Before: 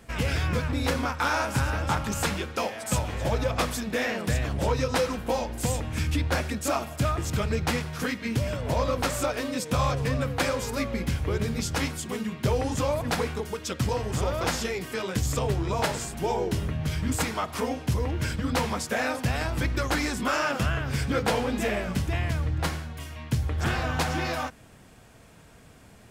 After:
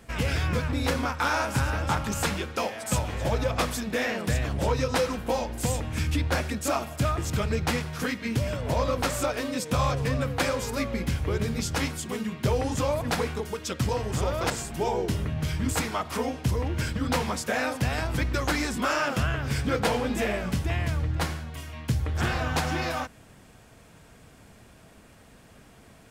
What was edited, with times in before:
0:14.50–0:15.93: remove

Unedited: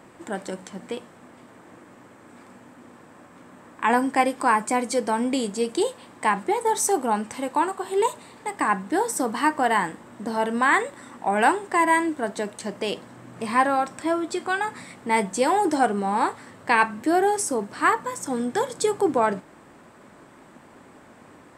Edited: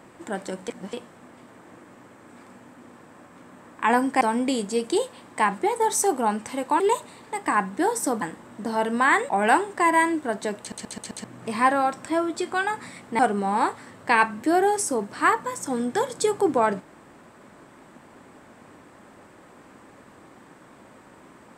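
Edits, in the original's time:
0:00.68–0:00.93: reverse
0:04.21–0:05.06: remove
0:07.65–0:07.93: remove
0:09.35–0:09.83: remove
0:10.90–0:11.23: remove
0:12.53: stutter in place 0.13 s, 5 plays
0:15.13–0:15.79: remove

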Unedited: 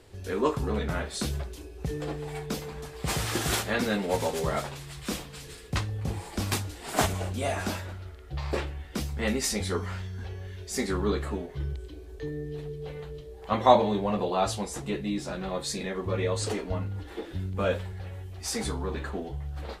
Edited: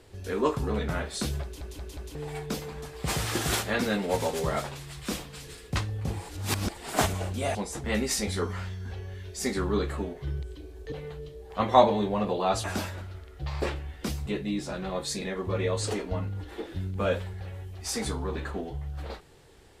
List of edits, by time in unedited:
0:01.43: stutter in place 0.18 s, 4 plays
0:06.29–0:06.77: reverse
0:07.55–0:09.17: swap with 0:14.56–0:14.85
0:12.25–0:12.84: remove

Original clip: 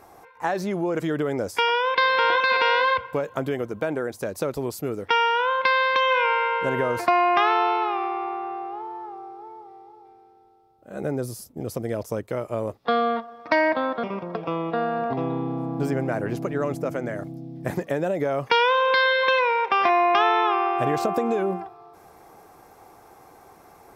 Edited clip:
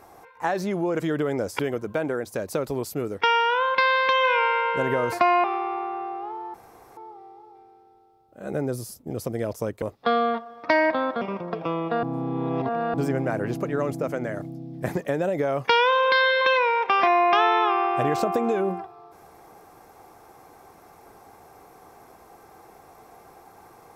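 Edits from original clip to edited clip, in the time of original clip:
0:01.59–0:03.46: remove
0:07.31–0:07.94: remove
0:09.04–0:09.47: fill with room tone
0:12.32–0:12.64: remove
0:14.85–0:15.76: reverse

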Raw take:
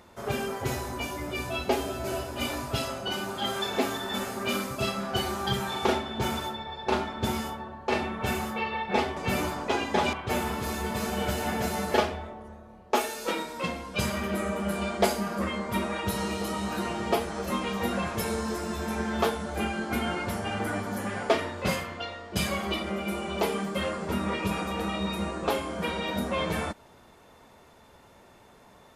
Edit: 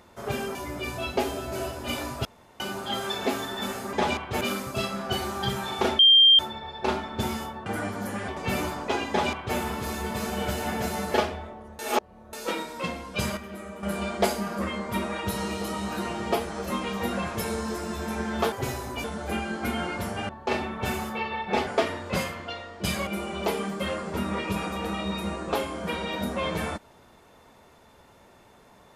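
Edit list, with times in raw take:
0:00.55–0:01.07: move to 0:19.32
0:02.77–0:03.12: fill with room tone
0:06.03–0:06.43: beep over 3,180 Hz −12 dBFS
0:07.70–0:09.08: swap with 0:20.57–0:21.19
0:09.89–0:10.37: duplicate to 0:04.45
0:12.59–0:13.13: reverse
0:14.17–0:14.63: clip gain −9.5 dB
0:22.59–0:23.02: remove

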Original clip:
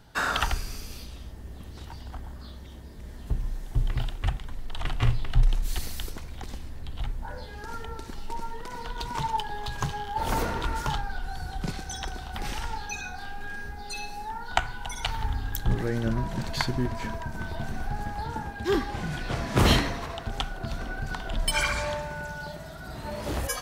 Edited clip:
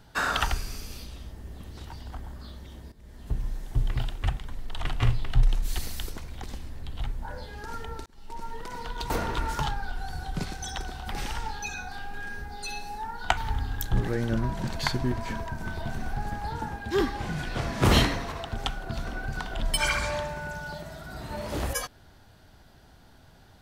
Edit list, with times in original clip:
0:02.92–0:03.40: fade in, from −14 dB
0:08.06–0:08.56: fade in
0:09.10–0:10.37: remove
0:14.64–0:15.11: remove

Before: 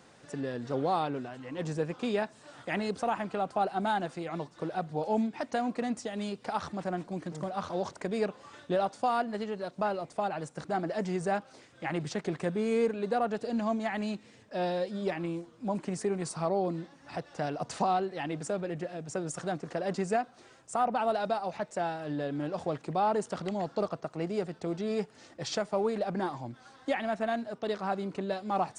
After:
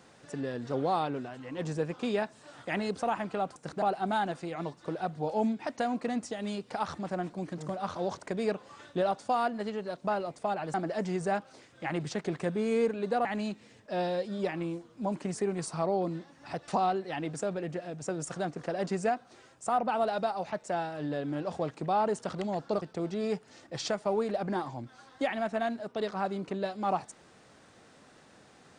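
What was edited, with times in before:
0:10.48–0:10.74: move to 0:03.56
0:13.25–0:13.88: remove
0:17.31–0:17.75: remove
0:23.89–0:24.49: remove

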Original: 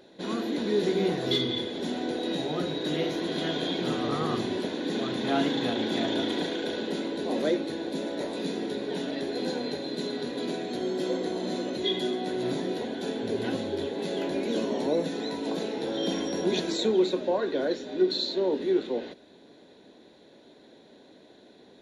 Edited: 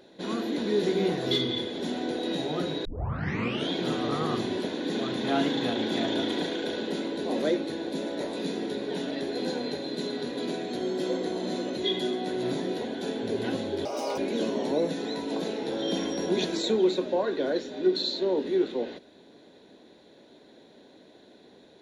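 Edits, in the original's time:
0:02.85: tape start 0.85 s
0:13.85–0:14.33: play speed 146%

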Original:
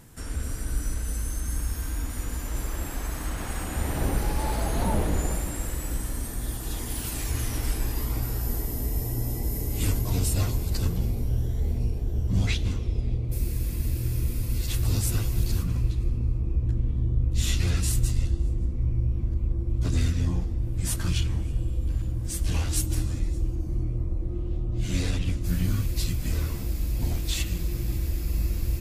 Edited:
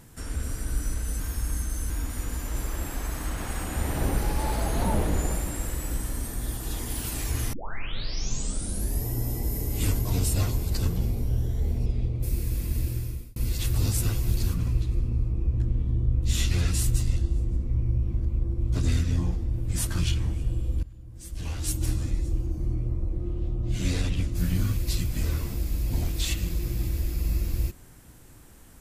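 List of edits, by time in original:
0:01.20–0:01.90: reverse
0:07.53: tape start 1.53 s
0:11.86–0:12.95: remove
0:13.94–0:14.45: fade out
0:21.92–0:22.96: fade in quadratic, from −17.5 dB

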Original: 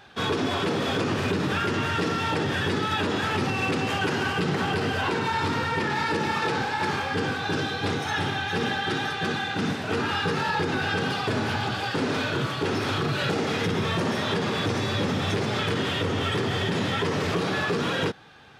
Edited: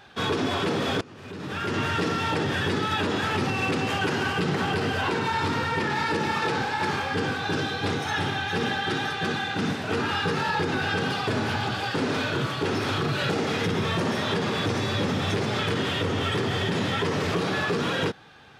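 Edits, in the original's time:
0:01.01–0:01.79: fade in quadratic, from −21.5 dB

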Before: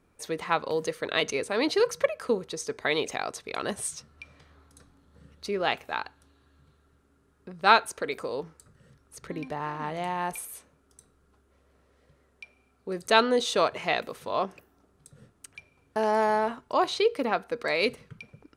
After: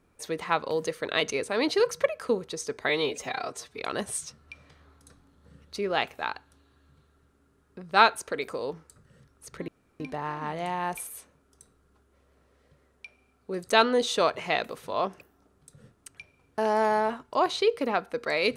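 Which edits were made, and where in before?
0:02.89–0:03.49: time-stretch 1.5×
0:09.38: splice in room tone 0.32 s

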